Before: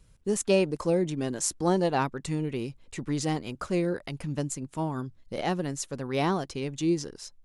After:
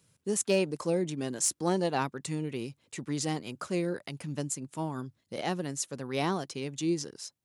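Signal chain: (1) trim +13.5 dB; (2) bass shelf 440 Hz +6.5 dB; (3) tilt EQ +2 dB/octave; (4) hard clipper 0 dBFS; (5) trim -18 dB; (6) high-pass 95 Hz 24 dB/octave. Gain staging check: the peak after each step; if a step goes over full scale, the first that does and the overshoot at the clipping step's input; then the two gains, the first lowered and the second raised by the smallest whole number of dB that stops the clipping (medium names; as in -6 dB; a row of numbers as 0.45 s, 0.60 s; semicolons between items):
+2.0 dBFS, +5.0 dBFS, +7.0 dBFS, 0.0 dBFS, -18.0 dBFS, -15.0 dBFS; step 1, 7.0 dB; step 1 +6.5 dB, step 5 -11 dB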